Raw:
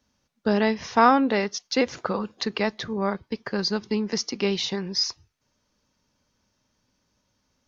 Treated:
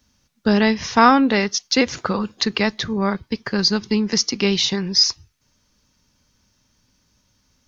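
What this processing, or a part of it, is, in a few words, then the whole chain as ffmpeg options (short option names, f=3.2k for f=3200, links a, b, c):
smiley-face EQ: -af "lowshelf=f=100:g=5.5,equalizer=f=600:t=o:w=1.7:g=-5.5,highshelf=f=5.1k:g=5,volume=7dB"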